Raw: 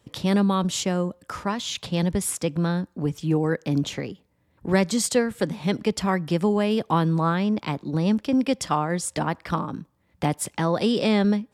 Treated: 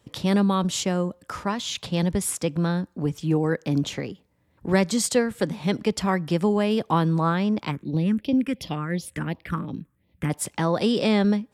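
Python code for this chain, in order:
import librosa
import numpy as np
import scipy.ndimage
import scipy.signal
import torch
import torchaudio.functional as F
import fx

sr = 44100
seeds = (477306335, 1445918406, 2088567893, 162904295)

y = fx.phaser_stages(x, sr, stages=4, low_hz=700.0, high_hz=1500.0, hz=2.8, feedback_pct=25, at=(7.7, 10.29), fade=0.02)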